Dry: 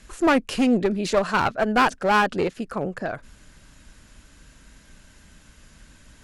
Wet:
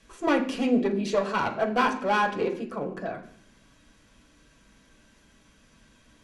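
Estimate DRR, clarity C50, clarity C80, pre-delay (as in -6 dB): 0.0 dB, 10.0 dB, 13.5 dB, 3 ms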